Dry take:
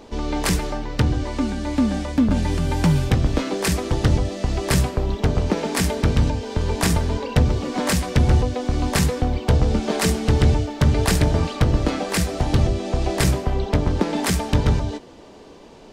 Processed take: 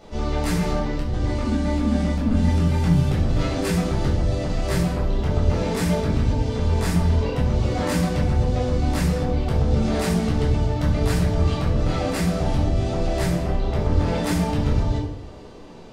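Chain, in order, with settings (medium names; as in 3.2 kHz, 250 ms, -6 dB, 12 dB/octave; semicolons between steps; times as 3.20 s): 0.60–1.26 s: compressor with a negative ratio -22 dBFS, ratio -0.5; peak limiter -16 dBFS, peak gain reduction 10 dB; simulated room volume 1000 m³, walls furnished, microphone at 6.8 m; trim -8 dB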